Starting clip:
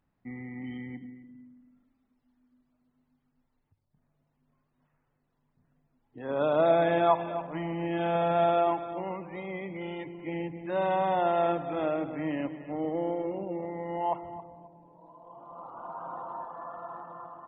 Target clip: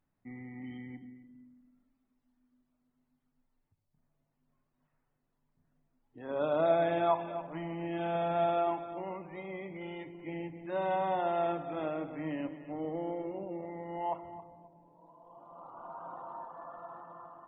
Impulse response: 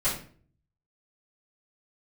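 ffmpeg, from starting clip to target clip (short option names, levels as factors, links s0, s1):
-filter_complex "[0:a]asplit=2[s0][s1];[1:a]atrim=start_sample=2205,atrim=end_sample=3969[s2];[s1][s2]afir=irnorm=-1:irlink=0,volume=0.1[s3];[s0][s3]amix=inputs=2:normalize=0,volume=0.501"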